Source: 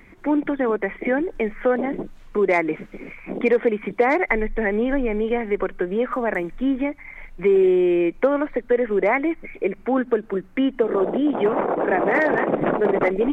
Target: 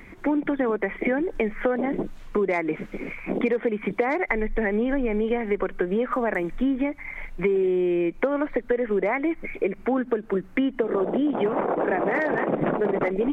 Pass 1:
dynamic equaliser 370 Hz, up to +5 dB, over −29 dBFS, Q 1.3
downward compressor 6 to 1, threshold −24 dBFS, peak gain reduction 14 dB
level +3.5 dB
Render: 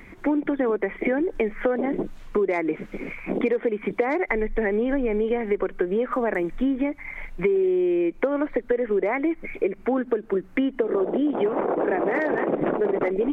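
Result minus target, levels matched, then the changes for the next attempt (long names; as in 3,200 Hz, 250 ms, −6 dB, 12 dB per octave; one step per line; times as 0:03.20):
125 Hz band −3.5 dB
change: dynamic equaliser 160 Hz, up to +5 dB, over −29 dBFS, Q 1.3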